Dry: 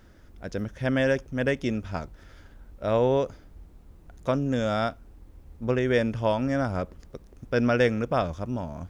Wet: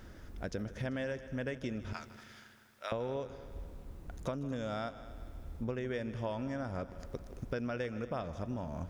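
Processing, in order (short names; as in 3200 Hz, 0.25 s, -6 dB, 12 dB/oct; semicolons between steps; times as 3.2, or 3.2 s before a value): 1.93–2.92 HPF 1500 Hz 12 dB/oct; compressor 6:1, threshold -38 dBFS, peak gain reduction 19.5 dB; multi-head echo 78 ms, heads second and third, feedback 55%, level -16.5 dB; gain +2.5 dB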